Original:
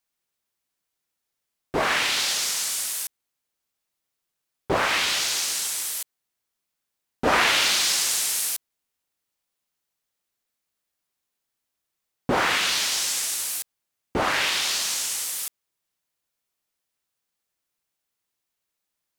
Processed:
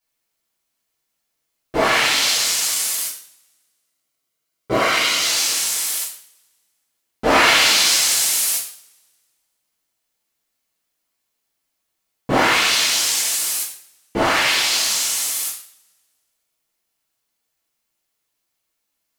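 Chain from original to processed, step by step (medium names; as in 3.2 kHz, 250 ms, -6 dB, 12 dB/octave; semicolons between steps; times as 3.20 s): 3.00–5.24 s: comb of notches 870 Hz; two-slope reverb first 0.5 s, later 1.7 s, from -27 dB, DRR -8 dB; trim -2.5 dB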